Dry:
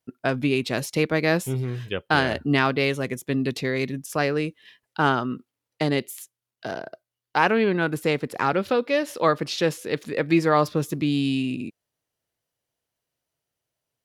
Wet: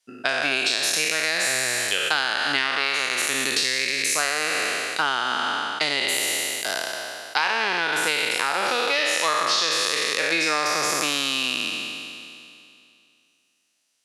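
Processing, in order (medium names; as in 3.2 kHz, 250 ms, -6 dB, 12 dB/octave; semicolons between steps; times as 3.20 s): spectral sustain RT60 2.50 s; frequency weighting ITU-R 468; compression 6:1, threshold -21 dBFS, peak gain reduction 12 dB; trim +2 dB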